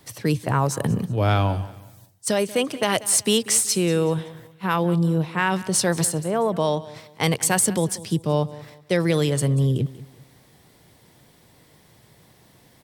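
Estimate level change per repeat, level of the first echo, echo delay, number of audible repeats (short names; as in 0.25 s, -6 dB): -10.0 dB, -18.0 dB, 0.188 s, 2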